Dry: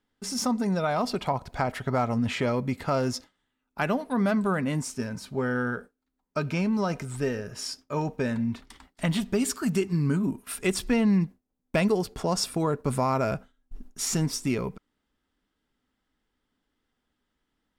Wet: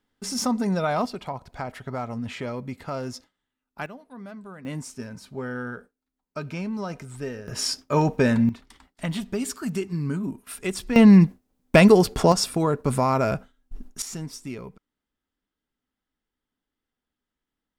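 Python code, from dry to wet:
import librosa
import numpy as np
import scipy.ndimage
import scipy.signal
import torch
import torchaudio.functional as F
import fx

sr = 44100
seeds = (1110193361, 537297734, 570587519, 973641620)

y = fx.gain(x, sr, db=fx.steps((0.0, 2.0), (1.06, -5.5), (3.86, -16.0), (4.65, -4.5), (7.48, 8.0), (8.49, -2.5), (10.96, 10.0), (12.32, 3.5), (14.02, -8.0)))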